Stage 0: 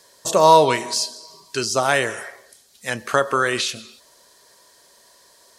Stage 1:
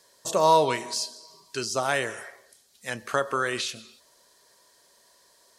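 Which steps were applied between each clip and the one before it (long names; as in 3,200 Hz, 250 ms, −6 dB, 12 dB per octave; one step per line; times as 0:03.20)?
mains-hum notches 50/100 Hz
level −7 dB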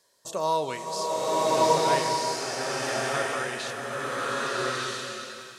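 slow-attack reverb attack 1,310 ms, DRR −7.5 dB
level −7 dB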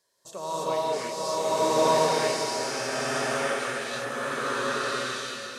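reverb whose tail is shaped and stops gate 360 ms rising, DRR −7.5 dB
level −7.5 dB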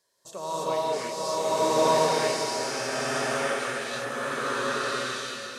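no processing that can be heard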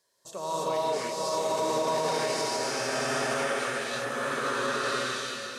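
brickwall limiter −19 dBFS, peak gain reduction 9 dB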